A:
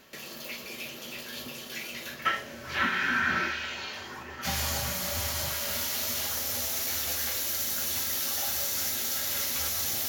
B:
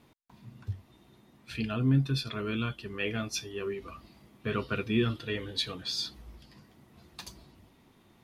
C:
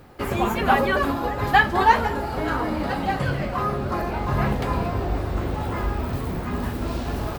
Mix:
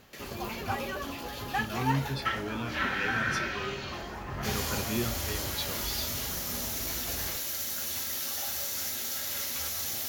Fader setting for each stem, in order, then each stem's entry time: −3.5, −5.0, −15.0 decibels; 0.00, 0.00, 0.00 seconds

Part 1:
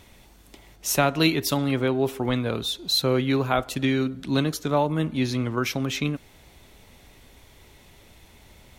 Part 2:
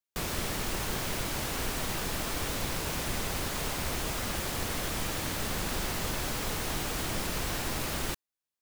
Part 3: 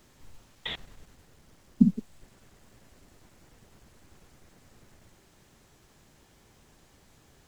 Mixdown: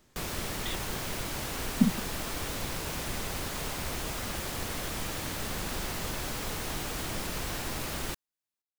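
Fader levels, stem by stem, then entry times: muted, −2.0 dB, −4.0 dB; muted, 0.00 s, 0.00 s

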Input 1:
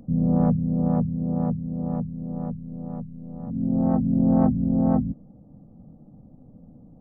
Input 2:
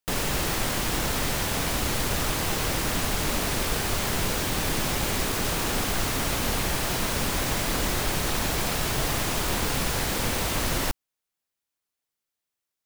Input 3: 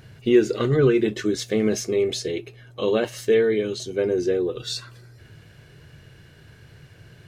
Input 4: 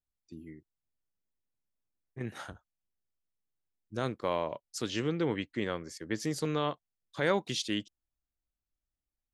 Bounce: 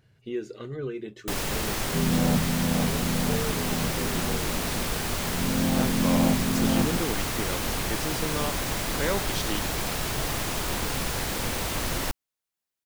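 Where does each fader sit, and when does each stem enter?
−4.0, −2.5, −15.5, −0.5 decibels; 1.85, 1.20, 0.00, 1.80 seconds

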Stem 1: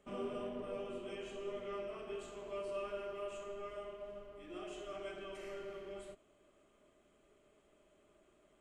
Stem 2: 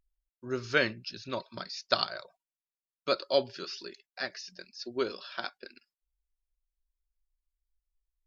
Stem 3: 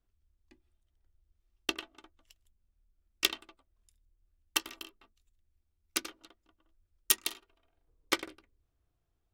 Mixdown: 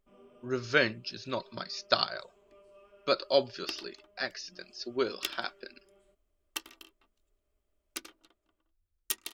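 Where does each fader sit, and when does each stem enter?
−16.5, +1.0, −7.0 decibels; 0.00, 0.00, 2.00 seconds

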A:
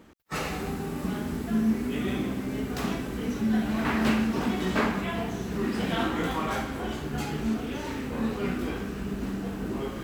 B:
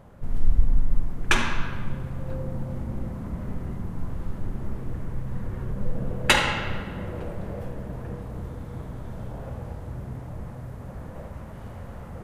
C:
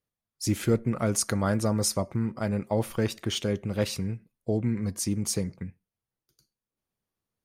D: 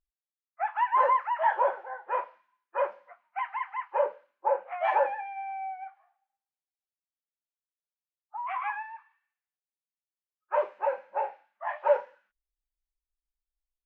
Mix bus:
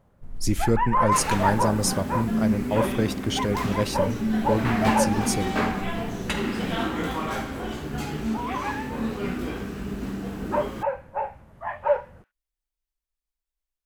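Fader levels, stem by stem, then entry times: +0.5, −11.5, +1.5, +1.5 decibels; 0.80, 0.00, 0.00, 0.00 seconds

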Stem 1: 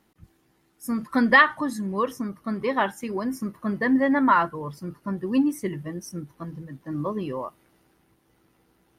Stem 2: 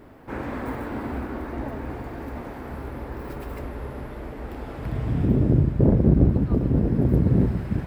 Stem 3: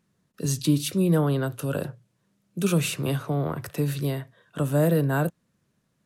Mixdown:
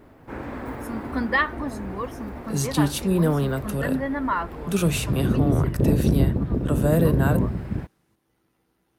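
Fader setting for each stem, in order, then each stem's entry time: −6.0, −2.5, +0.5 decibels; 0.00, 0.00, 2.10 seconds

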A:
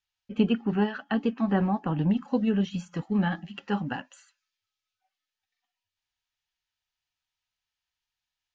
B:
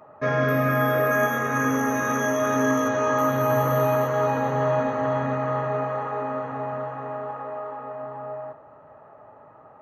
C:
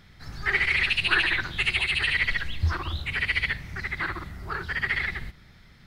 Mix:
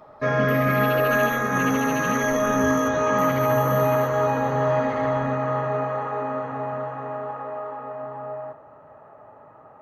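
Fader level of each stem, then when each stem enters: −9.5, +1.0, −14.5 decibels; 0.00, 0.00, 0.00 seconds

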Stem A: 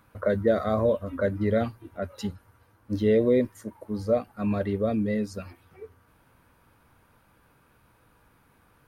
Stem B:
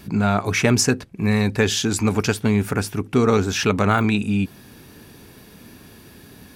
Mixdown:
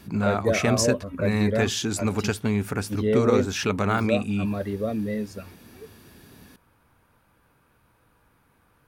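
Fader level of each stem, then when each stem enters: −1.5, −5.5 decibels; 0.00, 0.00 seconds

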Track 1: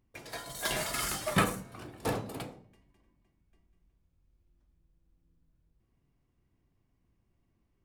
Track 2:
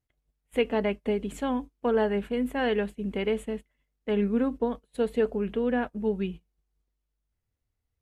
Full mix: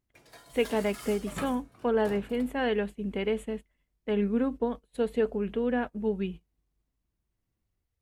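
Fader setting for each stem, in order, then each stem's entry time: −11.0, −1.5 decibels; 0.00, 0.00 seconds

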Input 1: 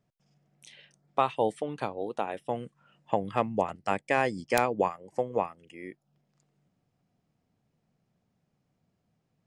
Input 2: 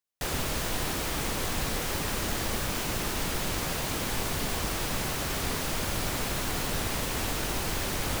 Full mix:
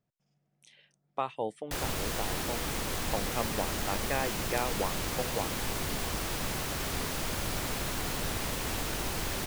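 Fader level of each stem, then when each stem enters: −7.0, −3.0 decibels; 0.00, 1.50 seconds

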